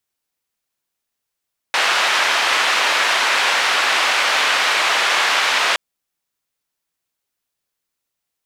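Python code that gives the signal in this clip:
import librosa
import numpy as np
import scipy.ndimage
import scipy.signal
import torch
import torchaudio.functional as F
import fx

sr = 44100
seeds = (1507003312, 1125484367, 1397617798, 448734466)

y = fx.band_noise(sr, seeds[0], length_s=4.02, low_hz=770.0, high_hz=2700.0, level_db=-17.0)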